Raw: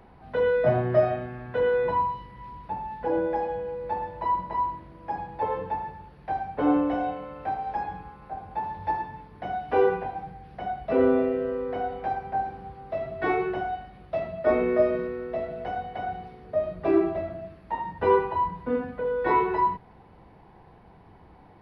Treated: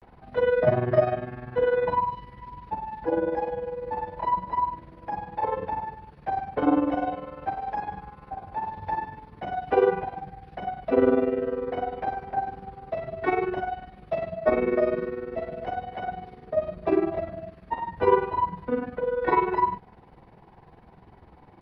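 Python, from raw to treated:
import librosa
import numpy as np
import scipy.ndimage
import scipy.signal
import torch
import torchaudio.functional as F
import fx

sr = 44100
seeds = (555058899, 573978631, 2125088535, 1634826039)

y = fx.granulator(x, sr, seeds[0], grain_ms=70.0, per_s=20.0, spray_ms=20.0, spread_st=0)
y = F.gain(torch.from_numpy(y), 3.0).numpy()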